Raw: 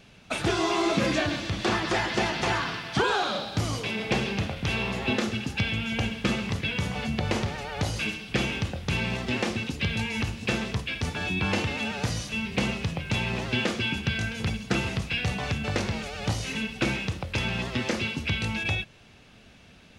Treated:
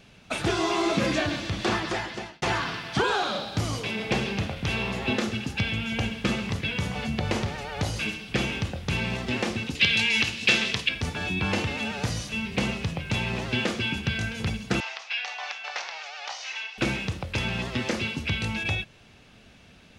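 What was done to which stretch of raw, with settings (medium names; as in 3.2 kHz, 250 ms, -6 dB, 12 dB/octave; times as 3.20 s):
1.73–2.42 s: fade out
9.75–10.89 s: frequency weighting D
14.80–16.78 s: elliptic band-pass 740–5900 Hz, stop band 70 dB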